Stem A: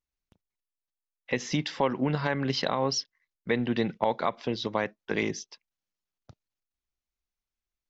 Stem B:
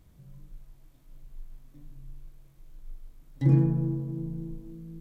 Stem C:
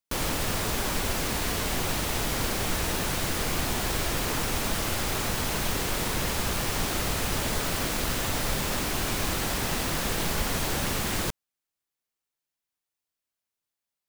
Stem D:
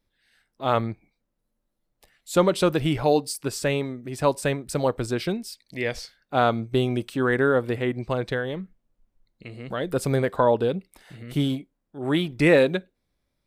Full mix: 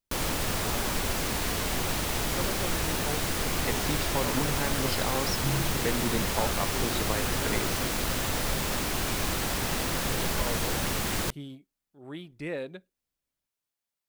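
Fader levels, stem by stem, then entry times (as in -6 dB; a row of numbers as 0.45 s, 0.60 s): -5.0 dB, -10.5 dB, -1.0 dB, -17.5 dB; 2.35 s, 2.00 s, 0.00 s, 0.00 s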